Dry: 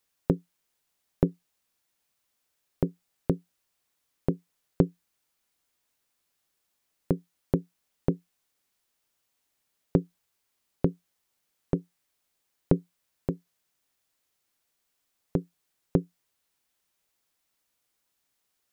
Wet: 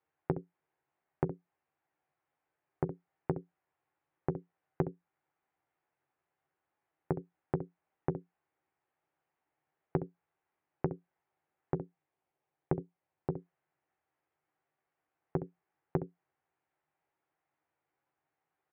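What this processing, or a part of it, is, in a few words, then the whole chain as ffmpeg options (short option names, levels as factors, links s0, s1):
bass amplifier: -filter_complex "[0:a]asettb=1/sr,asplit=3[s0][s1][s2];[s0]atrim=end=11.764[s3];[s1]atrim=start=11.76:end=13.32,asetpts=PTS-STARTPTS,afade=t=in:d=0.004:c=qsin,afade=t=out:st=1.556:d=0.004:c=qsin,equalizer=f=1500:w=1.2:g=-5[s4];[s2]atrim=start=13.316[s5];[s3][s4]acrossfade=d=0.004:c1=hsin:c2=qsin[s6];[s6][s5]acrossfade=d=0.004:c1=qsin:c2=hsin,aecho=1:1:13|66:0.501|0.376,acompressor=threshold=0.0355:ratio=3,highpass=64,equalizer=f=66:t=q:w=4:g=-7,equalizer=f=140:t=q:w=4:g=5,equalizer=f=220:t=q:w=4:g=-7,equalizer=f=350:t=q:w=4:g=6,equalizer=f=790:t=q:w=4:g=8,lowpass=f=2100:w=0.5412,lowpass=f=2100:w=1.3066,volume=0.708"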